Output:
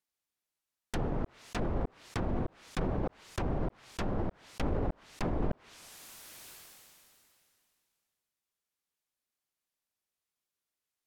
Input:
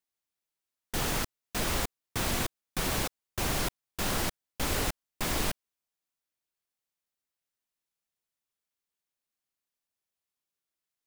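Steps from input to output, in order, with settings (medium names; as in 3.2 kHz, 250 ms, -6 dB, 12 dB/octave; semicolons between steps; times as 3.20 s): low-pass that closes with the level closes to 640 Hz, closed at -27.5 dBFS; decay stretcher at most 22 dB/s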